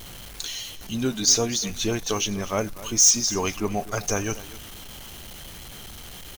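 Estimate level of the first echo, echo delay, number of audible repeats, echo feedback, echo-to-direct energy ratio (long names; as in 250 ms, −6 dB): −17.0 dB, 247 ms, 1, repeats not evenly spaced, −17.0 dB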